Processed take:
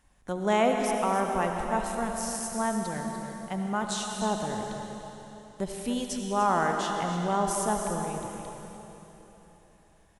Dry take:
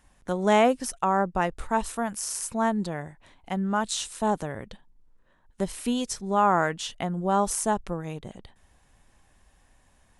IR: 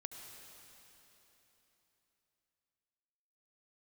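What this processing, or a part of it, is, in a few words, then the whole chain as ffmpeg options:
cave: -filter_complex "[0:a]aecho=1:1:294:0.266[link_01];[1:a]atrim=start_sample=2205[link_02];[link_01][link_02]afir=irnorm=-1:irlink=0,volume=1dB"

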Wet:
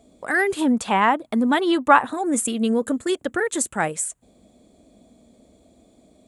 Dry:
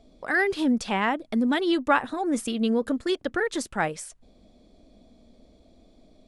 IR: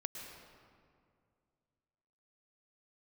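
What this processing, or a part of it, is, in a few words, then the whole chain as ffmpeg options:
budget condenser microphone: -filter_complex "[0:a]asettb=1/sr,asplit=3[link_01][link_02][link_03];[link_01]atrim=end=0.614[link_04];[link_02]atrim=start=0.61:end=2.13,asetpts=PTS-STARTPTS,afade=type=in:duration=0.004:curve=qsin,afade=type=out:start_time=1.516:duration=0.004:curve=qsin,equalizer=frequency=1000:width_type=o:width=1:gain=7,equalizer=frequency=4000:width_type=o:width=1:gain=3,equalizer=frequency=8000:width_type=o:width=1:gain=-7[link_05];[link_03]atrim=start=2.126[link_06];[link_04][link_05]acrossfade=duration=0.004:curve1=hsin:curve2=qsin[link_07];[link_07][link_06]acrossfade=duration=0.004:curve1=qsin:curve2=hsin,highpass=75,highshelf=frequency=6300:width_type=q:width=3:gain=6.5,volume=3dB"

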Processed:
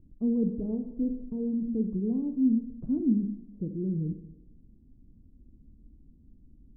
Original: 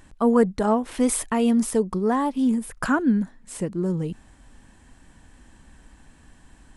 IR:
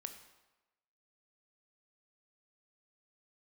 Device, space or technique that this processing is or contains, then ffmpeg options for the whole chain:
next room: -filter_complex "[0:a]lowpass=frequency=330:width=0.5412,lowpass=frequency=330:width=1.3066[link_01];[1:a]atrim=start_sample=2205[link_02];[link_01][link_02]afir=irnorm=-1:irlink=0,asettb=1/sr,asplit=3[link_03][link_04][link_05];[link_03]atrim=end=0.484[link_06];[link_04]atrim=start=0.48:end=1.68,asetpts=PTS-STARTPTS,afade=type=in:duration=0.004:curve=qsin,afade=type=out:start_time=1.196:duration=0.004:curve=qsin,aecho=1:1:6.6:0.4,atrim=end_sample=52920[link_07];[link_05]atrim=start=1.676[link_08];[link_06][link_07]acrossfade=duration=0.004:curve1=hsin:curve2=qsin[link_09];[link_09][link_08]acrossfade=duration=0.004:curve1=qsin:curve2=hsin"

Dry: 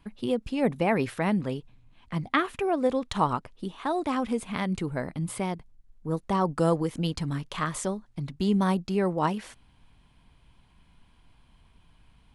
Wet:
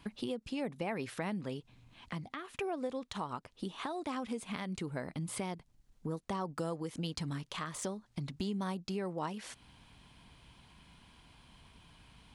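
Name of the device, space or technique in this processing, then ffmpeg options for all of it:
broadcast voice chain: -af "highpass=frequency=90:poles=1,deesser=0.7,acompressor=threshold=-41dB:ratio=4,equalizer=frequency=5500:width_type=o:width=1.9:gain=5,alimiter=level_in=4dB:limit=-24dB:level=0:latency=1:release=258,volume=-4dB,volume=3.5dB"

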